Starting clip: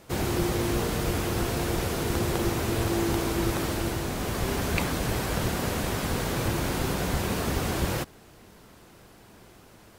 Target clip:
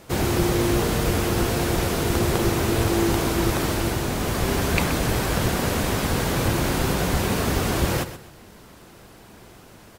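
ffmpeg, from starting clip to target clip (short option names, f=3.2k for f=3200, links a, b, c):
-af "aecho=1:1:126|252|378:0.237|0.0664|0.0186,volume=5dB"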